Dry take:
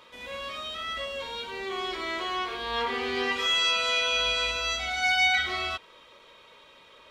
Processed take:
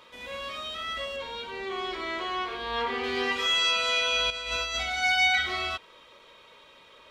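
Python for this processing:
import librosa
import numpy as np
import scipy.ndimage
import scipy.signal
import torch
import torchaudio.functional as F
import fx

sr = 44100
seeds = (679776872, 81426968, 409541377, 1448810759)

y = fx.high_shelf(x, sr, hz=5700.0, db=-8.5, at=(1.16, 3.04))
y = fx.over_compress(y, sr, threshold_db=-31.0, ratio=-0.5, at=(4.3, 4.83))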